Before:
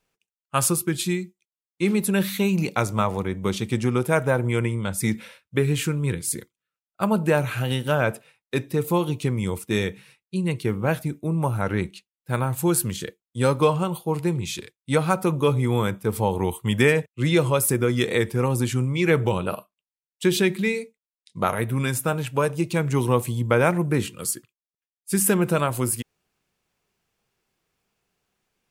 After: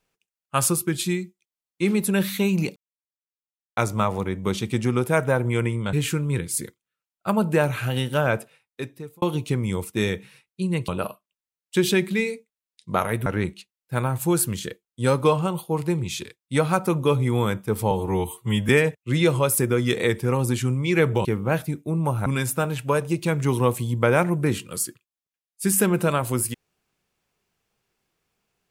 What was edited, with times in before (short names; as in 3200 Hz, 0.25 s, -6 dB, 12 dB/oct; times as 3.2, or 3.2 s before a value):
2.76 insert silence 1.01 s
4.92–5.67 cut
8.07–8.96 fade out
10.62–11.63 swap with 19.36–21.74
16.28–16.8 stretch 1.5×